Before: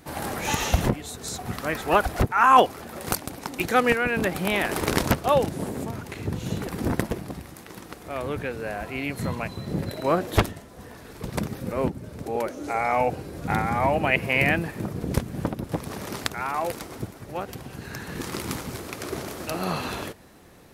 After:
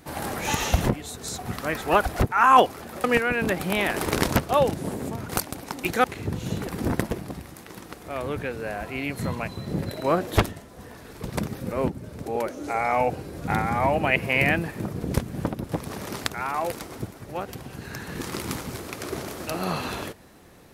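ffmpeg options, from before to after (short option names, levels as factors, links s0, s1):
-filter_complex "[0:a]asplit=4[s0][s1][s2][s3];[s0]atrim=end=3.042[s4];[s1]atrim=start=3.788:end=6.042[s5];[s2]atrim=start=3.038:end=3.792[s6];[s3]atrim=start=6.038[s7];[s4][s5]acrossfade=d=0.004:c1=hsin:c2=hsin[s8];[s8][s6]acrossfade=d=0.004:c1=hsin:c2=hsin[s9];[s9][s7]acrossfade=d=0.004:c1=hsin:c2=hsin"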